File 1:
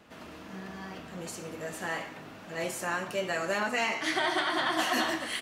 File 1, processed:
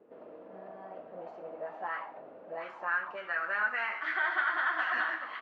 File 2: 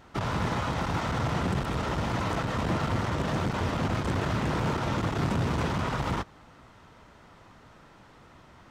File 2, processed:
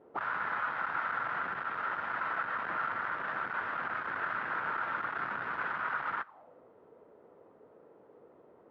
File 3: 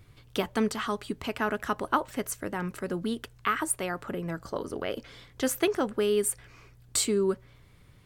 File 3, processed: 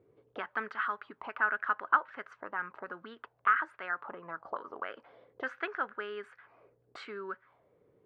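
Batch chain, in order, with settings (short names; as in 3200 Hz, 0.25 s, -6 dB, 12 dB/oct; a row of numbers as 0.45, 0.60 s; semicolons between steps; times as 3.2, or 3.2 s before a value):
low shelf 99 Hz -7 dB; auto-wah 410–1500 Hz, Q 3.9, up, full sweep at -28.5 dBFS; air absorption 240 m; gain +7.5 dB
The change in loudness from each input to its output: -1.0, -5.0, -4.5 LU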